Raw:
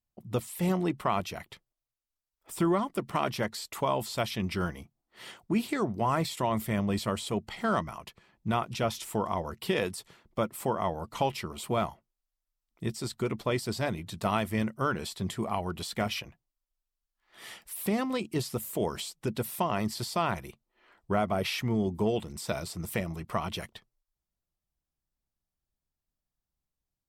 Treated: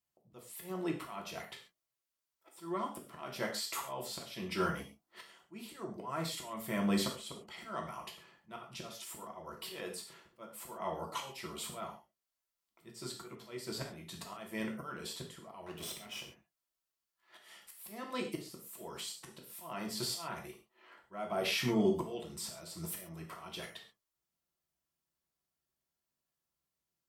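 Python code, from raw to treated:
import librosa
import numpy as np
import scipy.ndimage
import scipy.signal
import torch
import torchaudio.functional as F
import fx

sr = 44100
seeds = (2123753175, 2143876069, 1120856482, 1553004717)

y = fx.lower_of_two(x, sr, delay_ms=0.35, at=(15.66, 16.22))
y = fx.highpass(y, sr, hz=320.0, slope=6)
y = fx.auto_swell(y, sr, attack_ms=589.0)
y = fx.rev_gated(y, sr, seeds[0], gate_ms=160, shape='falling', drr_db=0.0)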